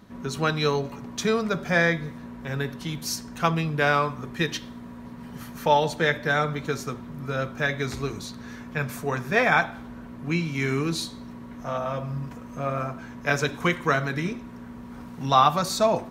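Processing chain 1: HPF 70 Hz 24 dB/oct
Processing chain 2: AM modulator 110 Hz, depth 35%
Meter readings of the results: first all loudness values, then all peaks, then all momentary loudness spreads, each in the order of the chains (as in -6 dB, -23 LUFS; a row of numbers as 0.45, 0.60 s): -26.0, -28.0 LUFS; -5.0, -6.0 dBFS; 18, 18 LU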